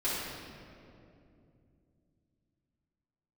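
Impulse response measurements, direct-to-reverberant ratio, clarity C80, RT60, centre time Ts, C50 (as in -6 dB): -13.0 dB, 0.0 dB, 2.7 s, 0.132 s, -2.5 dB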